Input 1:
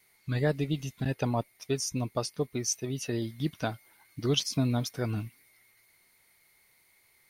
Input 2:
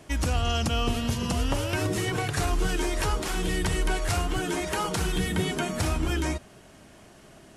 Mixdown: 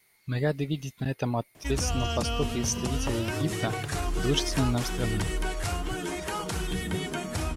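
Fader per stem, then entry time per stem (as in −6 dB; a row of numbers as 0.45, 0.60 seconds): +0.5, −4.0 decibels; 0.00, 1.55 seconds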